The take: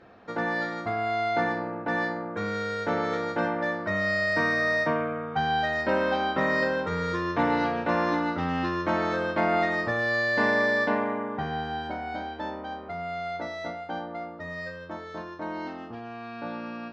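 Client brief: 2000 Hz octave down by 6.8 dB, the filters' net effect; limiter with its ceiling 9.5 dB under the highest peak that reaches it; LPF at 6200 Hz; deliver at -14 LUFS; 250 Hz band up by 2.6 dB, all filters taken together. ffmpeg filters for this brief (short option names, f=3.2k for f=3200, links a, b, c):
-af "lowpass=6.2k,equalizer=f=250:t=o:g=3.5,equalizer=f=2k:t=o:g=-8,volume=17dB,alimiter=limit=-3.5dB:level=0:latency=1"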